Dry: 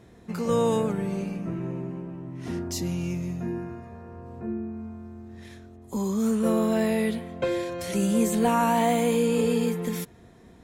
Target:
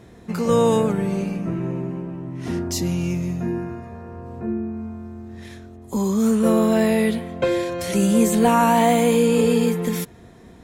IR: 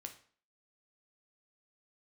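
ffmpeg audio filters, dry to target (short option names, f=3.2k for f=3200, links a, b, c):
-af "volume=6dB"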